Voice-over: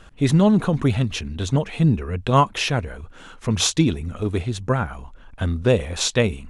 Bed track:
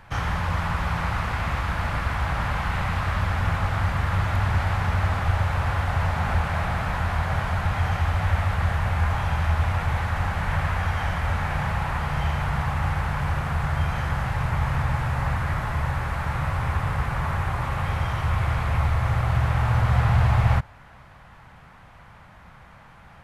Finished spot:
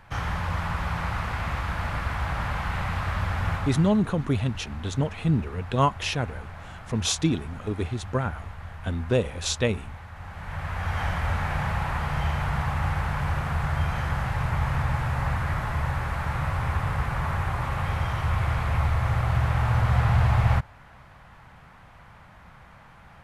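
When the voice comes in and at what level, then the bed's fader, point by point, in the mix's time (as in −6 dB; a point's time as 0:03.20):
3.45 s, −5.5 dB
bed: 0:03.54 −3 dB
0:04.02 −16.5 dB
0:10.14 −16.5 dB
0:11.00 −1.5 dB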